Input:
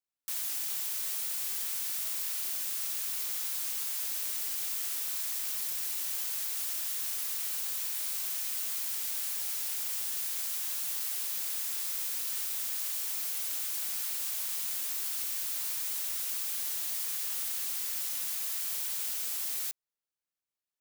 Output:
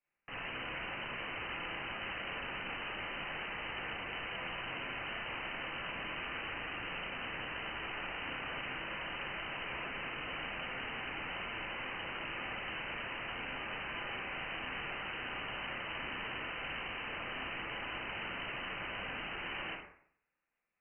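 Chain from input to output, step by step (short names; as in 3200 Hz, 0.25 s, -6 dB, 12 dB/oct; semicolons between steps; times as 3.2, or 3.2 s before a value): Schroeder reverb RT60 0.59 s, combs from 31 ms, DRR -5.5 dB; overdrive pedal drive 17 dB, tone 1000 Hz, clips at -14.5 dBFS; inverted band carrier 3000 Hz; gain +1 dB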